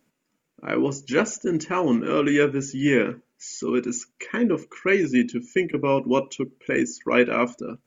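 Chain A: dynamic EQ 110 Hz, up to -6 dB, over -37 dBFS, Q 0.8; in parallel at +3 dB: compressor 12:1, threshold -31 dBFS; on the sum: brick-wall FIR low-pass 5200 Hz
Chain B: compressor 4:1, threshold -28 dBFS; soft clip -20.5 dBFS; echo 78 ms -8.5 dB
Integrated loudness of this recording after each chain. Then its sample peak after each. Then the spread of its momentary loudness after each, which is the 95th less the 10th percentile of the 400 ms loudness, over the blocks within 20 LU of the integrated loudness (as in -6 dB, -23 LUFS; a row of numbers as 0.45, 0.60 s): -22.0, -32.5 LUFS; -3.0, -20.0 dBFS; 9, 4 LU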